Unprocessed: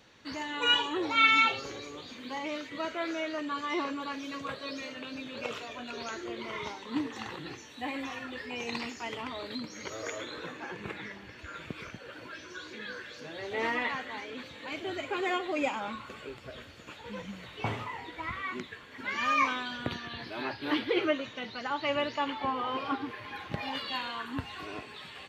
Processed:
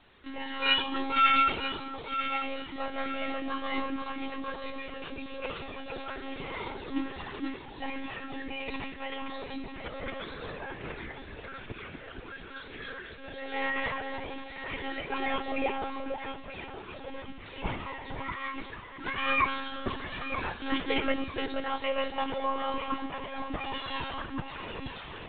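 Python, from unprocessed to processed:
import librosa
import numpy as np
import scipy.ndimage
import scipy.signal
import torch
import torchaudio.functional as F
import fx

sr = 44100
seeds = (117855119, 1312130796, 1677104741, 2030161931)

p1 = x + fx.echo_alternate(x, sr, ms=473, hz=890.0, feedback_pct=56, wet_db=-4.5, dry=0)
y = fx.lpc_monotone(p1, sr, seeds[0], pitch_hz=270.0, order=16)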